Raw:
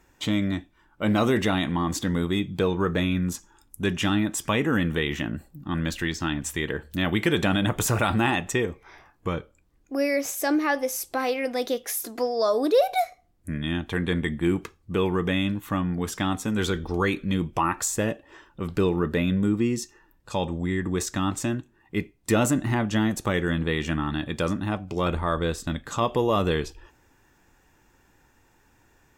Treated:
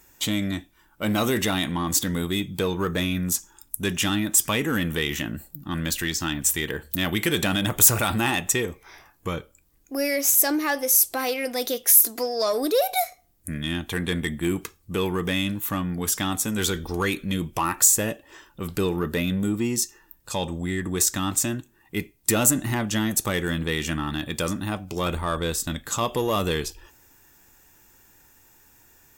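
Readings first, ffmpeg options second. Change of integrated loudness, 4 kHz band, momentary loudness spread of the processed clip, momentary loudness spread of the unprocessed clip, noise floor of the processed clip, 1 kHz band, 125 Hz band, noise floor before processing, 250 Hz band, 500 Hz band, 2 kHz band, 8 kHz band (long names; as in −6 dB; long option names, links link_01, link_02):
+2.5 dB, +4.0 dB, 14 LU, 9 LU, −60 dBFS, −1.0 dB, −1.5 dB, −62 dBFS, −1.5 dB, −1.5 dB, +1.0 dB, +11.5 dB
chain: -filter_complex "[0:a]asplit=2[link_01][link_02];[link_02]asoftclip=type=tanh:threshold=-23.5dB,volume=-6.5dB[link_03];[link_01][link_03]amix=inputs=2:normalize=0,aemphasis=mode=production:type=75fm,volume=-3dB"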